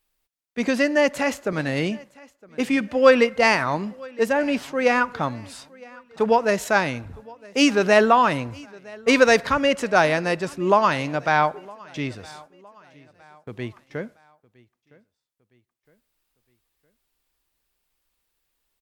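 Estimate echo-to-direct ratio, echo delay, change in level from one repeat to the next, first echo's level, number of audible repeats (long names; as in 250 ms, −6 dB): −23.0 dB, 962 ms, −7.0 dB, −24.0 dB, 2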